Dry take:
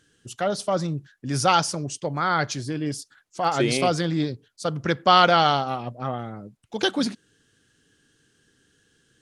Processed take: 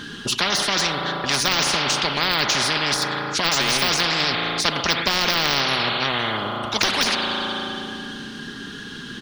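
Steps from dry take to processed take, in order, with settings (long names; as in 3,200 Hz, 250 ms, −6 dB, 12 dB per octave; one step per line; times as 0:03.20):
comb filter 4.9 ms, depth 40%
spring reverb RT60 2.2 s, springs 36 ms, chirp 60 ms, DRR 12.5 dB
de-essing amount 85%
octave-band graphic EQ 250/500/1,000/4,000/8,000 Hz +11/−6/+11/+10/−12 dB
every bin compressed towards the loudest bin 10 to 1
level +1.5 dB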